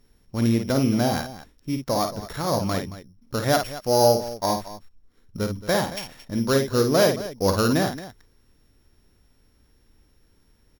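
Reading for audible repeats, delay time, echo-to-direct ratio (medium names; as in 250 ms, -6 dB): 2, 52 ms, -6.0 dB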